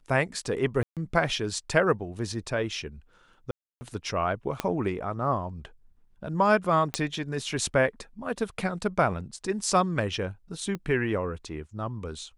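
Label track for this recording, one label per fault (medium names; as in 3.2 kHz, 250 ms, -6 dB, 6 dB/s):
0.830000	0.970000	dropout 137 ms
3.510000	3.810000	dropout 300 ms
4.600000	4.600000	pop -12 dBFS
6.940000	6.940000	pop -11 dBFS
10.750000	10.750000	pop -21 dBFS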